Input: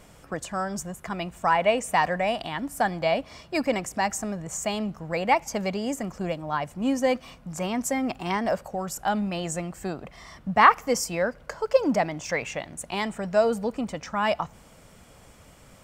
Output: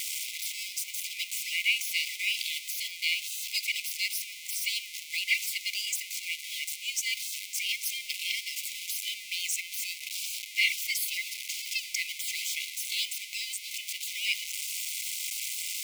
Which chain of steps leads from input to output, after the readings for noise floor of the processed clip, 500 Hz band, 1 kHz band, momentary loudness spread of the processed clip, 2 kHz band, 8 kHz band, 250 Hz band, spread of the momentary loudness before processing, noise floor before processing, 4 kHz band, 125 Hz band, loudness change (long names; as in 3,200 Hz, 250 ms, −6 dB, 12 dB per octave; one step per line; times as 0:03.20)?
−44 dBFS, below −40 dB, below −40 dB, 6 LU, −0.5 dB, +4.0 dB, below −40 dB, 11 LU, −52 dBFS, +7.5 dB, below −40 dB, −4.0 dB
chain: converter with a step at zero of −30 dBFS
gate on every frequency bin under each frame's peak −15 dB weak
linear-phase brick-wall high-pass 2,000 Hz
level +6 dB